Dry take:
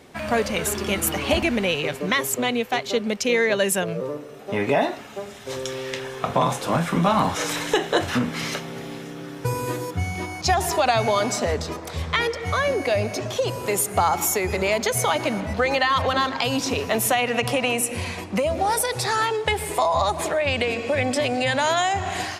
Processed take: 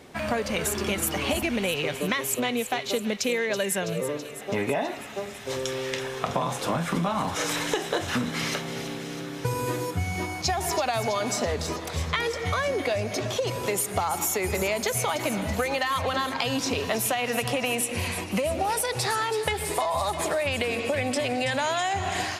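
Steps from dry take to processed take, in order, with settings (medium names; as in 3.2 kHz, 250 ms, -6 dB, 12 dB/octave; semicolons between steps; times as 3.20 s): compression, threshold -23 dBFS, peak gain reduction 8.5 dB; feedback echo behind a high-pass 328 ms, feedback 70%, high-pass 2.1 kHz, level -10 dB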